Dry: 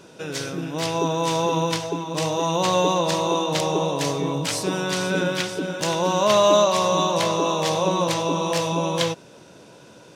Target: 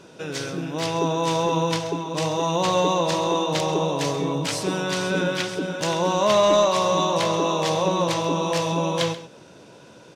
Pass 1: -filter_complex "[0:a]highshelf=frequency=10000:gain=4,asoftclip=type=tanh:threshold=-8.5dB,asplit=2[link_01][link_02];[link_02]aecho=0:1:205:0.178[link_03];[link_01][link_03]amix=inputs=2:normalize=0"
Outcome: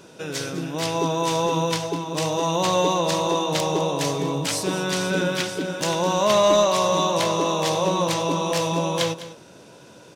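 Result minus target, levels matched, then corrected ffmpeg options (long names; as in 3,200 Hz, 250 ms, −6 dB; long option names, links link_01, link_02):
echo 72 ms late; 8,000 Hz band +2.5 dB
-filter_complex "[0:a]highshelf=frequency=10000:gain=-8,asoftclip=type=tanh:threshold=-8.5dB,asplit=2[link_01][link_02];[link_02]aecho=0:1:133:0.178[link_03];[link_01][link_03]amix=inputs=2:normalize=0"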